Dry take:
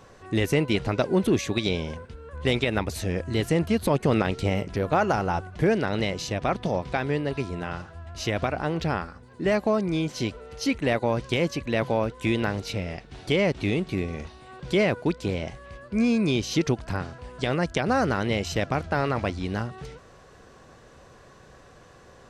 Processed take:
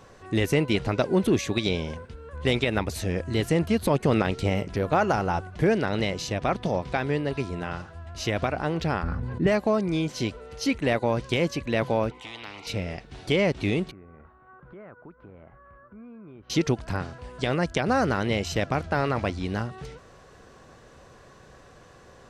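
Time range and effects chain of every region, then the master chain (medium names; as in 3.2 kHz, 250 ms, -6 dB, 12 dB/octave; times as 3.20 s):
9.03–9.47 s: tone controls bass +11 dB, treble -13 dB + decay stretcher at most 22 dB/s
12.11–12.67 s: vowel filter u + spectrum-flattening compressor 10:1
13.91–16.50 s: four-pole ladder low-pass 1.5 kHz, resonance 65% + compression 3:1, threshold -46 dBFS
whole clip: none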